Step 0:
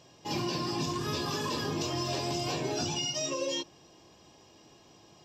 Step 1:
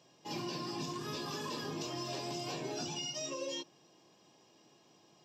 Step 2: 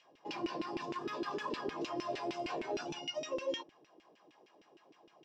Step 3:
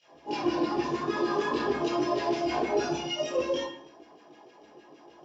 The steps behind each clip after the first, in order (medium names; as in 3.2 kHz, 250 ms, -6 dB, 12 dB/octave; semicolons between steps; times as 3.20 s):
high-pass 130 Hz 24 dB/octave; trim -7 dB
LFO band-pass saw down 6.5 Hz 290–2700 Hz; trim +9 dB
reverberation RT60 0.55 s, pre-delay 15 ms, DRR -14.5 dB; trim -7 dB